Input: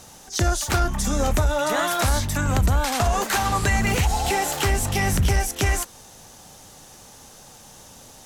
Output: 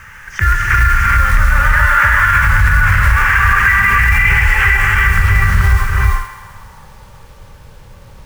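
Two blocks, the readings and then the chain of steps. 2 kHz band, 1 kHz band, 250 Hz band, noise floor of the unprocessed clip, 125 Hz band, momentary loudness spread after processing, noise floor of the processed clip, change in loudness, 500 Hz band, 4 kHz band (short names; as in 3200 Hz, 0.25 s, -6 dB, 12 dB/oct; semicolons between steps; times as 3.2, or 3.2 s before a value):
+18.5 dB, +9.5 dB, -3.0 dB, -47 dBFS, +9.0 dB, 6 LU, -39 dBFS, +11.0 dB, -7.0 dB, +0.5 dB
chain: passive tone stack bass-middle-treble 10-0-10; in parallel at -2 dB: compressor 12:1, threshold -38 dBFS, peak gain reduction 16 dB; on the sum: fixed phaser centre 1700 Hz, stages 4; low-pass sweep 1800 Hz -> 560 Hz, 4.55–7.3; companded quantiser 6-bit; on a send: thinning echo 0.132 s, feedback 53%, level -11 dB; on the sum: non-linear reverb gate 0.45 s rising, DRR -3.5 dB; maximiser +17 dB; gain -1 dB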